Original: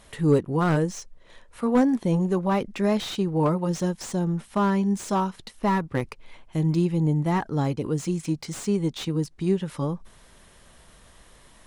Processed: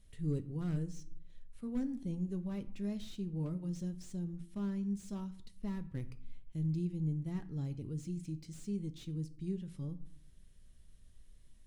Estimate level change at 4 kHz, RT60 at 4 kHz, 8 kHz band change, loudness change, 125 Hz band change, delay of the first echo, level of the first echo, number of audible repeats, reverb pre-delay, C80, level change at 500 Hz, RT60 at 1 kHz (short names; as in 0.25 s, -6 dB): -20.0 dB, 0.35 s, -18.5 dB, -14.5 dB, -12.0 dB, none, none, none, 3 ms, 20.0 dB, -21.5 dB, 0.60 s